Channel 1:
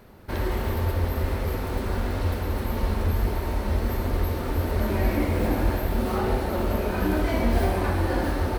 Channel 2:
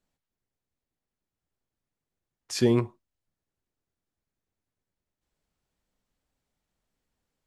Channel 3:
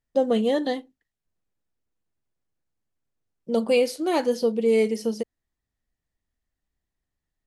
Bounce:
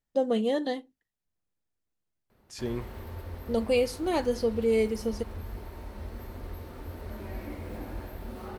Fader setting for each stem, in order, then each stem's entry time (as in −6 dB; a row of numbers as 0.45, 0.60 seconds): −15.0, −11.5, −4.5 decibels; 2.30, 0.00, 0.00 seconds